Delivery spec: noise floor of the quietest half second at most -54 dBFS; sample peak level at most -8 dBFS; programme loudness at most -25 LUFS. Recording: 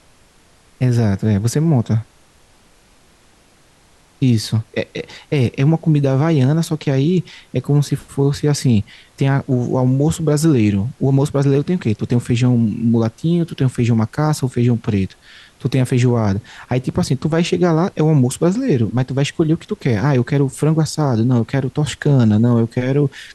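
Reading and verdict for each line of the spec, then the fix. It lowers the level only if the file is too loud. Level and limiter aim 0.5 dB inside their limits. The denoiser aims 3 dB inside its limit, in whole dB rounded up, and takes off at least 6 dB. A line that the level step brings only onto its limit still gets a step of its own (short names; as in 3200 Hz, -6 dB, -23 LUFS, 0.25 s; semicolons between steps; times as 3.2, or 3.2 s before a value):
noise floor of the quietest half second -52 dBFS: fail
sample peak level -5.0 dBFS: fail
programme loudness -17.0 LUFS: fail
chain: gain -8.5 dB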